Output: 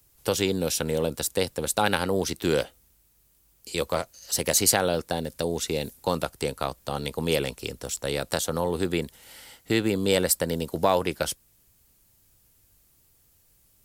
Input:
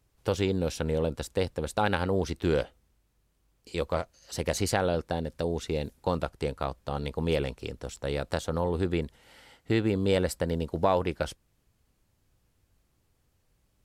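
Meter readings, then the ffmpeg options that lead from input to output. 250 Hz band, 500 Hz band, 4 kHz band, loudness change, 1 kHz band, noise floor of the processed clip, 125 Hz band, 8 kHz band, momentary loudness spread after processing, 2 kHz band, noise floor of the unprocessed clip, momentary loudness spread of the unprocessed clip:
+1.5 dB, +2.5 dB, +8.5 dB, +3.5 dB, +3.0 dB, −63 dBFS, −1.5 dB, +14.0 dB, 10 LU, +4.5 dB, −72 dBFS, 9 LU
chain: -filter_complex "[0:a]aemphasis=mode=production:type=75fm,acrossover=split=120|1300|3100[link_01][link_02][link_03][link_04];[link_01]acompressor=threshold=-47dB:ratio=6[link_05];[link_05][link_02][link_03][link_04]amix=inputs=4:normalize=0,volume=3dB"

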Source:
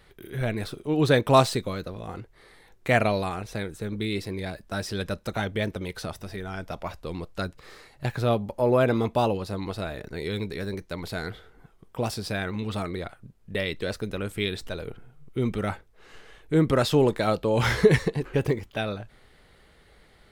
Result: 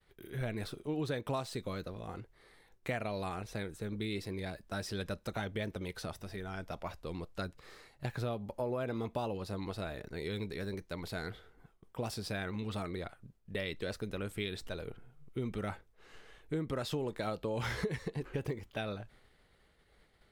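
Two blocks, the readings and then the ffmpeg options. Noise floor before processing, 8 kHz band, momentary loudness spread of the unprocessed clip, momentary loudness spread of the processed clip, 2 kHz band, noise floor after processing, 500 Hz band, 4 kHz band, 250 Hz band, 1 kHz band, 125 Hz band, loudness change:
−57 dBFS, −10.5 dB, 15 LU, 9 LU, −11.5 dB, −67 dBFS, −13.0 dB, −10.5 dB, −11.5 dB, −13.5 dB, −11.5 dB, −12.5 dB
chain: -af "acompressor=threshold=-25dB:ratio=12,agate=range=-33dB:threshold=-51dB:ratio=3:detection=peak,volume=-7dB"

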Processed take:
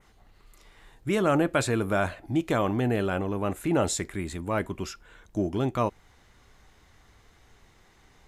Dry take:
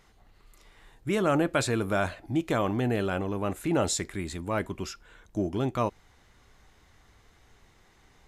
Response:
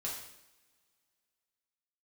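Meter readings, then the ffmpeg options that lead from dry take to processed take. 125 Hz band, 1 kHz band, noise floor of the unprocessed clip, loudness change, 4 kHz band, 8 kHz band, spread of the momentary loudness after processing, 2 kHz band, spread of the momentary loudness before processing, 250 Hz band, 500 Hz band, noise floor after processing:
+1.5 dB, +1.5 dB, −61 dBFS, +1.5 dB, −1.0 dB, 0.0 dB, 11 LU, +1.0 dB, 10 LU, +1.5 dB, +1.5 dB, −60 dBFS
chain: -af "adynamicequalizer=threshold=0.00224:dfrequency=4800:dqfactor=1.2:tfrequency=4800:tqfactor=1.2:attack=5:release=100:ratio=0.375:range=2.5:mode=cutabove:tftype=bell,volume=1.5dB"

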